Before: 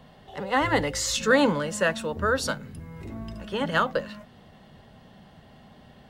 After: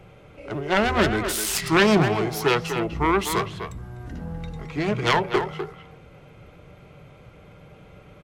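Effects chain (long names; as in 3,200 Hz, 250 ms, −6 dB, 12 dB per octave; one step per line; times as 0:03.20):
phase distortion by the signal itself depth 0.3 ms
speed change −26%
far-end echo of a speakerphone 250 ms, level −7 dB
level +3.5 dB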